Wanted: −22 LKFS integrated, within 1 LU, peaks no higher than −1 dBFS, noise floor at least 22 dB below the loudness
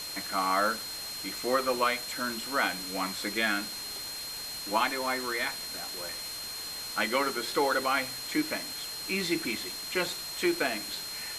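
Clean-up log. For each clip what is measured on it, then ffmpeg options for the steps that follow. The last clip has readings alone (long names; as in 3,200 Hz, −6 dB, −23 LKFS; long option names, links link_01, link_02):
interfering tone 4,200 Hz; level of the tone −38 dBFS; background noise floor −39 dBFS; target noise floor −53 dBFS; integrated loudness −30.5 LKFS; sample peak −11.5 dBFS; target loudness −22.0 LKFS
→ -af "bandreject=frequency=4200:width=30"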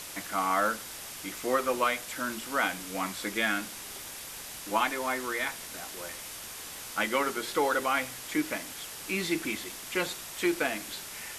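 interfering tone none found; background noise floor −42 dBFS; target noise floor −54 dBFS
→ -af "afftdn=noise_reduction=12:noise_floor=-42"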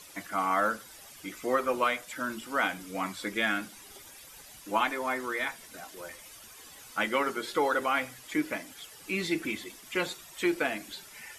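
background noise floor −51 dBFS; target noise floor −53 dBFS
→ -af "afftdn=noise_reduction=6:noise_floor=-51"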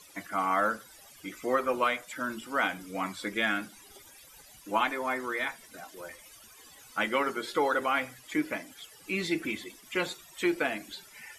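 background noise floor −54 dBFS; integrated loudness −31.0 LKFS; sample peak −12.5 dBFS; target loudness −22.0 LKFS
→ -af "volume=9dB"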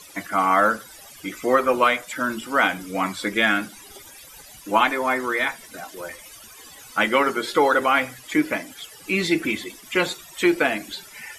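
integrated loudness −22.0 LKFS; sample peak −3.5 dBFS; background noise floor −45 dBFS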